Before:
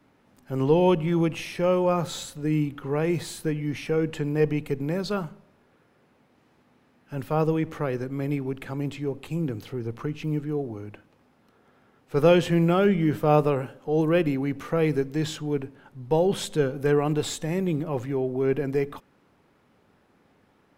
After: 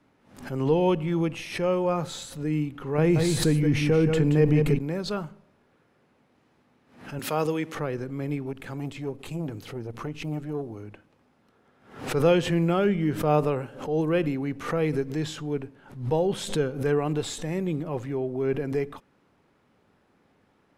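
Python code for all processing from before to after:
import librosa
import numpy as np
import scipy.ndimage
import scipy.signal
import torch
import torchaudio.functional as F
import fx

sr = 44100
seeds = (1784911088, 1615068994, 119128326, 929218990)

y = fx.chain(x, sr, fx.low_shelf(hz=290.0, db=6.5),
    fx.echo_single(ms=176, db=-7.0),
    fx.env_flatten(amount_pct=50), at=(2.98, 4.79))
y = fx.chain(y, sr, fx.highpass(hz=190.0, slope=12),
    fx.high_shelf(hz=2100.0, db=10.0), at=(7.19, 7.75))
y = fx.chain(y, sr, fx.high_shelf(hz=6400.0, db=5.5),
    fx.transformer_sat(knee_hz=260.0), at=(8.46, 10.83))
y = scipy.signal.sosfilt(scipy.signal.butter(2, 12000.0, 'lowpass', fs=sr, output='sos'), y)
y = fx.pre_swell(y, sr, db_per_s=110.0)
y = y * 10.0 ** (-2.5 / 20.0)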